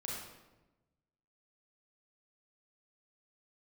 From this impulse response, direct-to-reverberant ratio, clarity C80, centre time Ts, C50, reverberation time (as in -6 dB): -4.5 dB, 2.5 dB, 74 ms, -1.0 dB, 1.1 s